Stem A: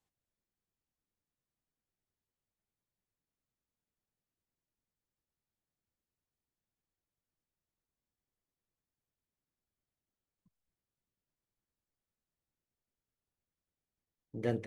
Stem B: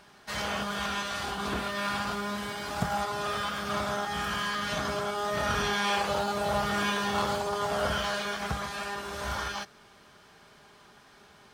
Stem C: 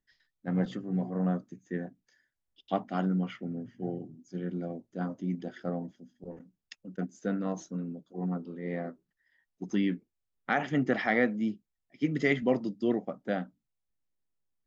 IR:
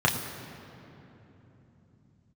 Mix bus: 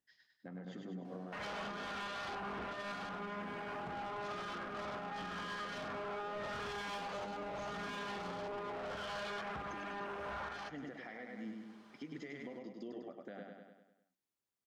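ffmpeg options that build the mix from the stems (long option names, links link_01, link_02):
-filter_complex "[1:a]afwtdn=0.01,tiltshelf=frequency=690:gain=5.5,adelay=1050,volume=-8.5dB,asplit=2[link_01][link_02];[link_02]volume=-13dB[link_03];[2:a]highpass=frequency=230:poles=1,acompressor=threshold=-38dB:ratio=6,volume=-1.5dB,asplit=2[link_04][link_05];[link_05]volume=-4.5dB[link_06];[link_01]asplit=2[link_07][link_08];[link_08]highpass=frequency=720:poles=1,volume=27dB,asoftclip=type=tanh:threshold=-19.5dB[link_09];[link_07][link_09]amix=inputs=2:normalize=0,lowpass=frequency=5400:poles=1,volume=-6dB,acompressor=threshold=-32dB:ratio=6,volume=0dB[link_10];[link_03][link_06]amix=inputs=2:normalize=0,aecho=0:1:100|200|300|400|500|600|700:1|0.51|0.26|0.133|0.0677|0.0345|0.0176[link_11];[link_04][link_10][link_11]amix=inputs=3:normalize=0,alimiter=level_in=13dB:limit=-24dB:level=0:latency=1:release=259,volume=-13dB"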